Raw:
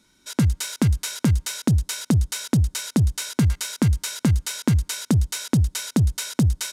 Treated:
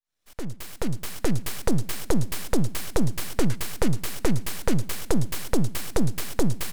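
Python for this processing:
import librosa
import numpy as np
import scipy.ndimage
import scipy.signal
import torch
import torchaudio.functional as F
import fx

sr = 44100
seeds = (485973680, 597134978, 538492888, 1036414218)

y = fx.fade_in_head(x, sr, length_s=1.46)
y = np.abs(y)
y = fx.echo_warbled(y, sr, ms=116, feedback_pct=66, rate_hz=2.8, cents=72, wet_db=-20.0)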